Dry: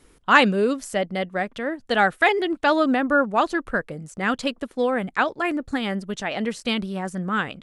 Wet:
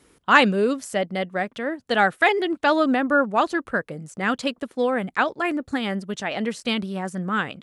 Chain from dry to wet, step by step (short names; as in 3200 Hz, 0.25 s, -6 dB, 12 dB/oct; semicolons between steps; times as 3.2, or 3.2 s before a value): HPF 79 Hz 12 dB/oct